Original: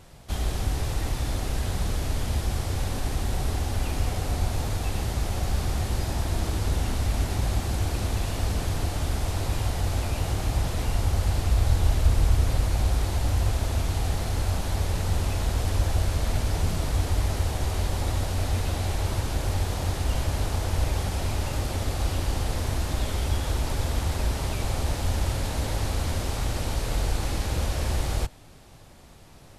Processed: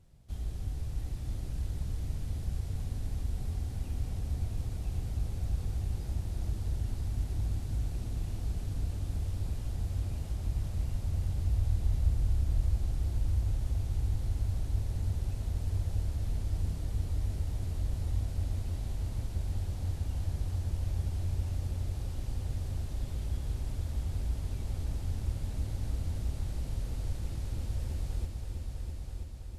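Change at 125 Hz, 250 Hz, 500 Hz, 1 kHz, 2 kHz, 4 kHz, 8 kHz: −6.5, −11.0, −16.5, −20.0, −19.5, −18.0, −16.5 decibels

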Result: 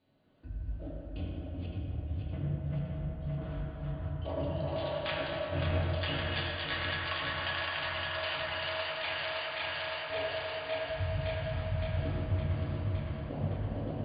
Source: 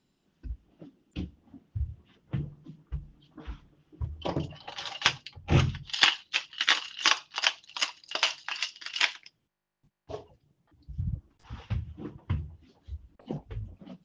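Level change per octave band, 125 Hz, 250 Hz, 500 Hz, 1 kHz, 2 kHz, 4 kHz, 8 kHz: +1.0 dB, −0.5 dB, +7.5 dB, −1.5 dB, −4.0 dB, −8.0 dB, below −40 dB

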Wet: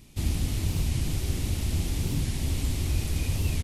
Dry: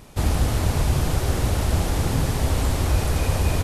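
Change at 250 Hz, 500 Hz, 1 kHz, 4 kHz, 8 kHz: −6.0, −13.5, −17.0, −5.0, −5.0 decibels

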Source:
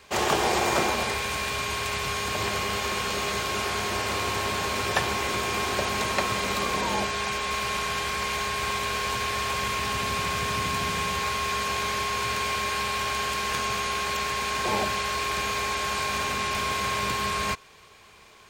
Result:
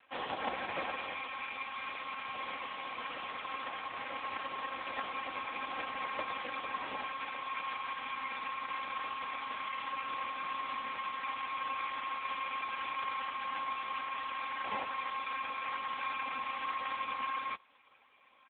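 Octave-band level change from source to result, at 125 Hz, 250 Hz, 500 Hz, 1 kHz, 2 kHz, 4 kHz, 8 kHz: below −25 dB, −17.5 dB, −16.5 dB, −8.5 dB, −11.5 dB, −15.5 dB, below −40 dB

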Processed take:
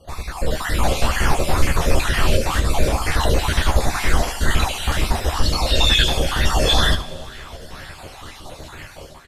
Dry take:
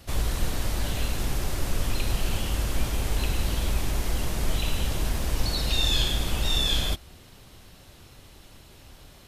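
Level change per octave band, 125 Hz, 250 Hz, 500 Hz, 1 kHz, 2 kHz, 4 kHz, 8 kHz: +7.5, +8.0, +13.0, +14.5, +12.5, +7.0, +6.5 decibels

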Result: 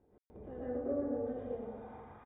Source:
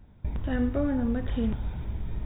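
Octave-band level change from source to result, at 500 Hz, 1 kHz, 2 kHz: −2.5, −6.5, −18.5 decibels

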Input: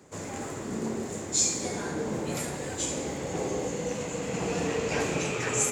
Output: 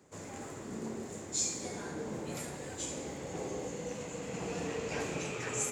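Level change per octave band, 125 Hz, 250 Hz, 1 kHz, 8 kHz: −8.0, −8.0, −8.0, −8.0 decibels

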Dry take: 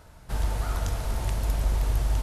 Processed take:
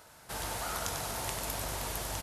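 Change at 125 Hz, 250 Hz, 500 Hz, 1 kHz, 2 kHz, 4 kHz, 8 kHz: −15.0, −6.0, −2.0, 0.0, +1.5, +3.0, +5.5 decibels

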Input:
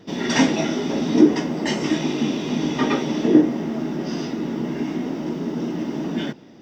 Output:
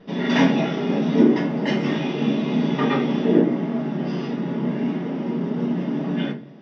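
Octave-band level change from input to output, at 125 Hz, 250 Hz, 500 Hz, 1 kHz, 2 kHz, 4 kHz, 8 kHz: +3.5 dB, 0.0 dB, +0.5 dB, +0.5 dB, 0.0 dB, −3.0 dB, below −10 dB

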